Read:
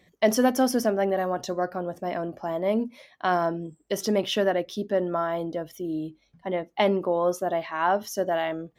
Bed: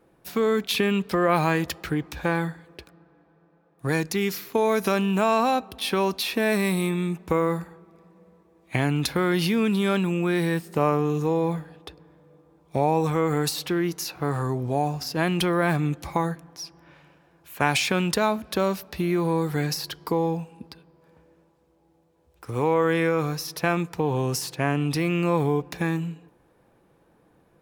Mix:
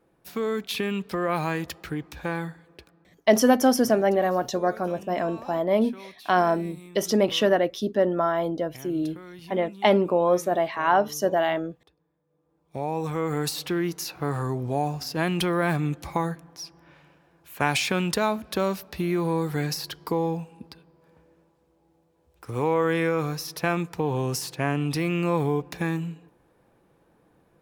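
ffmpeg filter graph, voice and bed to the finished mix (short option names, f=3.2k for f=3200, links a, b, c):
-filter_complex "[0:a]adelay=3050,volume=3dB[a];[1:a]volume=14.5dB,afade=t=out:st=2.84:d=0.53:silence=0.158489,afade=t=in:st=12.27:d=1.34:silence=0.105925[b];[a][b]amix=inputs=2:normalize=0"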